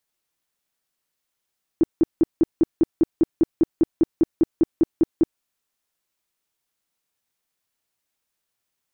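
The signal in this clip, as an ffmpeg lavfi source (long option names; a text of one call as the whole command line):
ffmpeg -f lavfi -i "aevalsrc='0.266*sin(2*PI*327*mod(t,0.2))*lt(mod(t,0.2),8/327)':duration=3.6:sample_rate=44100" out.wav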